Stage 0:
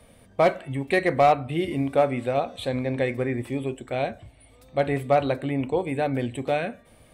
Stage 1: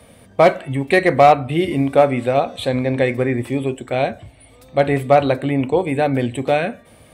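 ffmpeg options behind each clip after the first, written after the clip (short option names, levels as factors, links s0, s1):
-af "highpass=61,volume=2.37"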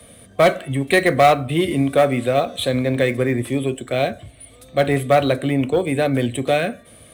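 -filter_complex "[0:a]superequalizer=9b=0.447:13b=1.58:15b=1.58:16b=2.51,acrossover=split=200|900[s0][s1][s2];[s1]asoftclip=type=tanh:threshold=0.316[s3];[s2]acrusher=bits=5:mode=log:mix=0:aa=0.000001[s4];[s0][s3][s4]amix=inputs=3:normalize=0"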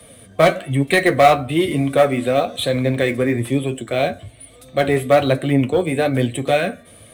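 -af "flanger=delay=5.6:depth=7.1:regen=47:speed=1.1:shape=triangular,volume=1.78"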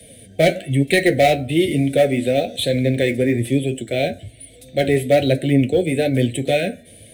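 -af "asuperstop=centerf=1100:order=4:qfactor=0.85,volume=1.12"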